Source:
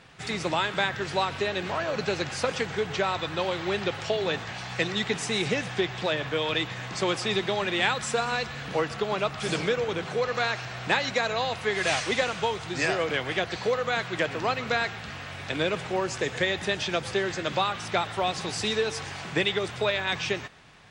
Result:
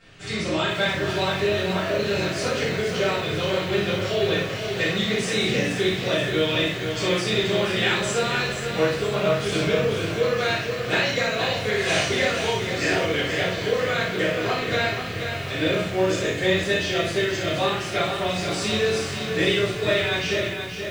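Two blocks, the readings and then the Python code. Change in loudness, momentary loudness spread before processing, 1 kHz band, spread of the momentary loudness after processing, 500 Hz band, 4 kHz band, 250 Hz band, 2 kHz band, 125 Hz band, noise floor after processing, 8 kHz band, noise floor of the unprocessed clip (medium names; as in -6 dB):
+4.5 dB, 4 LU, +0.5 dB, 4 LU, +5.5 dB, +4.5 dB, +6.5 dB, +4.0 dB, +7.5 dB, -30 dBFS, +4.0 dB, -39 dBFS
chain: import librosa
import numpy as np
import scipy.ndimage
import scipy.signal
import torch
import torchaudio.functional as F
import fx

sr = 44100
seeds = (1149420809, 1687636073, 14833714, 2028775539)

y = fx.peak_eq(x, sr, hz=1000.0, db=-5.5, octaves=0.78)
y = fx.notch(y, sr, hz=860.0, q=15.0)
y = fx.room_early_taps(y, sr, ms=(32, 59), db=(-6.5, -5.5))
y = fx.room_shoebox(y, sr, seeds[0], volume_m3=54.0, walls='mixed', distance_m=2.1)
y = fx.echo_crushed(y, sr, ms=479, feedback_pct=55, bits=6, wet_db=-7)
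y = y * librosa.db_to_amplitude(-8.0)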